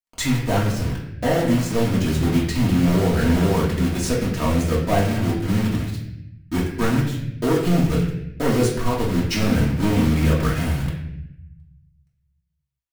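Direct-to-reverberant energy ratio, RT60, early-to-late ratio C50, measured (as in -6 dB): -6.0 dB, 0.80 s, 4.0 dB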